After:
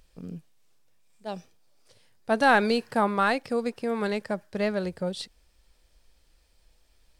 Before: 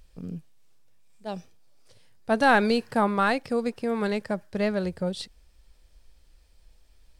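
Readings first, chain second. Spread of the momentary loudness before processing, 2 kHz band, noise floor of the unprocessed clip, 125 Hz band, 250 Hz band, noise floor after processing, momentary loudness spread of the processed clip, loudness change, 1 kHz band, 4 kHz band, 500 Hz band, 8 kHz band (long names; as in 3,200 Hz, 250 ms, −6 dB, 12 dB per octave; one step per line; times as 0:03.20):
20 LU, 0.0 dB, −59 dBFS, −2.5 dB, −2.0 dB, −64 dBFS, 21 LU, −0.5 dB, 0.0 dB, 0.0 dB, −0.5 dB, 0.0 dB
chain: low-shelf EQ 150 Hz −7 dB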